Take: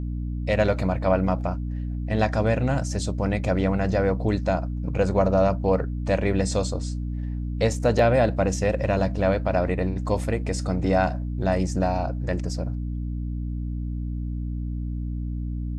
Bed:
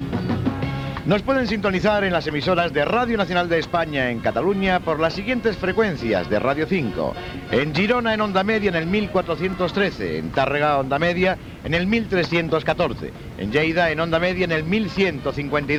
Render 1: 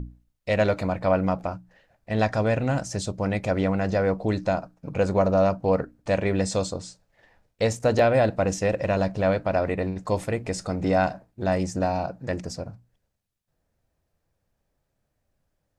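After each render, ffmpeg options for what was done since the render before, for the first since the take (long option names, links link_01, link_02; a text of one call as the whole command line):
ffmpeg -i in.wav -af "bandreject=frequency=60:width_type=h:width=6,bandreject=frequency=120:width_type=h:width=6,bandreject=frequency=180:width_type=h:width=6,bandreject=frequency=240:width_type=h:width=6,bandreject=frequency=300:width_type=h:width=6" out.wav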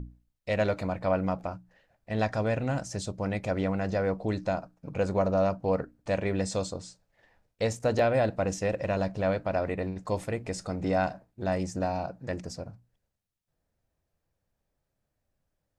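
ffmpeg -i in.wav -af "volume=-5dB" out.wav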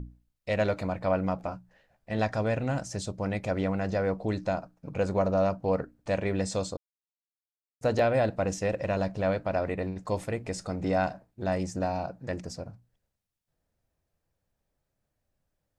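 ffmpeg -i in.wav -filter_complex "[0:a]asettb=1/sr,asplit=3[link_01][link_02][link_03];[link_01]atrim=end=1.444[link_04];[link_02]atrim=start=1.44:end=2.19,asetpts=PTS-STARTPTS,afade=type=in:duration=0.004:curve=qsin,afade=type=out:start_time=0.746:duration=0.004:curve=qsin,asplit=2[link_05][link_06];[link_06]adelay=15,volume=-8.5dB[link_07];[link_05][link_07]amix=inputs=2:normalize=0,atrim=end_sample=33075[link_08];[link_03]atrim=start=2.186[link_09];[link_04][link_08]acrossfade=duration=0.004:curve1=hsin:curve2=qsin[link_10];[link_10][link_09]acrossfade=duration=0.004:curve1=qsin:curve2=hsin,asplit=3[link_11][link_12][link_13];[link_11]atrim=end=6.77,asetpts=PTS-STARTPTS,afade=type=out:start_time=6.766:duration=0.004:curve=hsin[link_14];[link_12]atrim=start=6.77:end=7.81,asetpts=PTS-STARTPTS,volume=0[link_15];[link_13]atrim=start=7.81,asetpts=PTS-STARTPTS,afade=type=in:duration=0.004:curve=hsin[link_16];[link_14][link_15][link_16]concat=n=3:v=0:a=1" out.wav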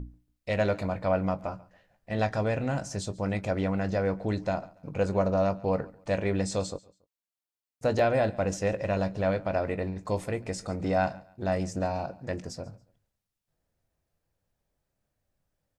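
ffmpeg -i in.wav -filter_complex "[0:a]asplit=2[link_01][link_02];[link_02]adelay=20,volume=-12.5dB[link_03];[link_01][link_03]amix=inputs=2:normalize=0,aecho=1:1:140|280:0.0794|0.023" out.wav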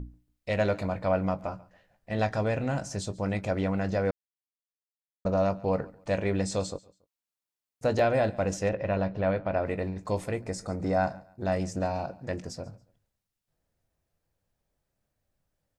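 ffmpeg -i in.wav -filter_complex "[0:a]asettb=1/sr,asplit=3[link_01][link_02][link_03];[link_01]atrim=end=8.694[link_04];[link_02]atrim=start=8.69:end=9.66,asetpts=PTS-STARTPTS,afade=type=in:duration=0.004:curve=qsin,afade=type=out:start_time=0.966:duration=0.004:curve=qsin,lowpass=3100[link_05];[link_03]atrim=start=9.656[link_06];[link_04][link_05]acrossfade=duration=0.004:curve1=hsin:curve2=qsin[link_07];[link_07][link_06]acrossfade=duration=0.004:curve1=qsin:curve2=hsin,asettb=1/sr,asplit=3[link_08][link_09][link_10];[link_08]atrim=end=10.414[link_11];[link_09]atrim=start=10.41:end=11.45,asetpts=PTS-STARTPTS,afade=type=in:duration=0.004:curve=qsin,afade=type=out:start_time=1.036:duration=0.004:curve=qsin,equalizer=frequency=3000:width=2.1:gain=-10[link_12];[link_10]atrim=start=11.446[link_13];[link_11][link_12]acrossfade=duration=0.004:curve1=hsin:curve2=qsin[link_14];[link_14][link_13]acrossfade=duration=0.004:curve1=qsin:curve2=hsin,asplit=3[link_15][link_16][link_17];[link_15]atrim=end=4.11,asetpts=PTS-STARTPTS,afade=type=out:start_time=4.106:duration=0.004:curve=hsin[link_18];[link_16]atrim=start=4.11:end=5.25,asetpts=PTS-STARTPTS,volume=0[link_19];[link_17]atrim=start=5.25,asetpts=PTS-STARTPTS,afade=type=in:duration=0.004:curve=hsin[link_20];[link_18][link_19][link_20]concat=n=3:v=0:a=1" out.wav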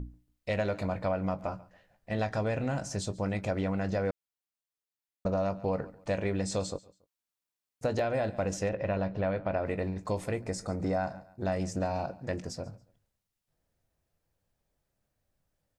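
ffmpeg -i in.wav -af "acompressor=threshold=-26dB:ratio=6" out.wav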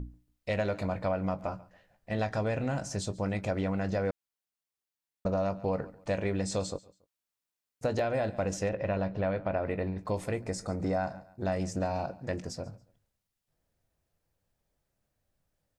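ffmpeg -i in.wav -filter_complex "[0:a]asettb=1/sr,asplit=3[link_01][link_02][link_03];[link_01]atrim=end=9.484[link_04];[link_02]atrim=start=9.48:end=10.14,asetpts=PTS-STARTPTS,afade=type=in:duration=0.004:curve=qsin,afade=type=out:start_time=0.656:duration=0.004:curve=qsin,equalizer=frequency=7100:width=1.5:gain=-12[link_05];[link_03]atrim=start=10.136[link_06];[link_04][link_05]acrossfade=duration=0.004:curve1=hsin:curve2=qsin[link_07];[link_07][link_06]acrossfade=duration=0.004:curve1=qsin:curve2=hsin" out.wav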